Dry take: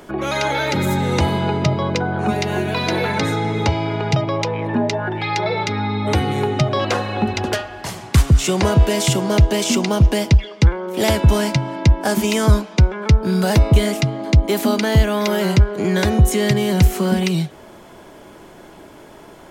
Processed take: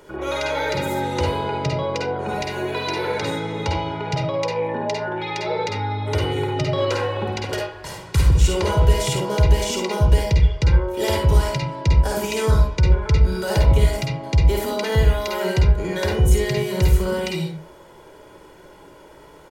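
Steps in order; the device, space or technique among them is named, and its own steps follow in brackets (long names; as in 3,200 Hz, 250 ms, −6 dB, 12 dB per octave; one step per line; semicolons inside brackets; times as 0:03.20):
microphone above a desk (comb filter 2.1 ms, depth 59%; convolution reverb RT60 0.40 s, pre-delay 47 ms, DRR −0.5 dB)
level −8 dB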